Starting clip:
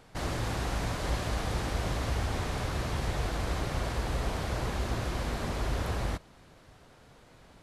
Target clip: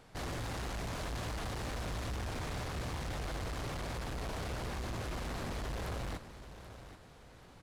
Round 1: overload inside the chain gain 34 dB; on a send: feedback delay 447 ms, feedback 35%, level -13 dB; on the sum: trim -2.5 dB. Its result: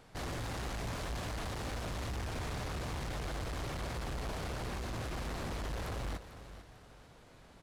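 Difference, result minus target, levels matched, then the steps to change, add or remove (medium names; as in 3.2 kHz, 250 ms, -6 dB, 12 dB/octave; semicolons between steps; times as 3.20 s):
echo 336 ms early
change: feedback delay 783 ms, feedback 35%, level -13 dB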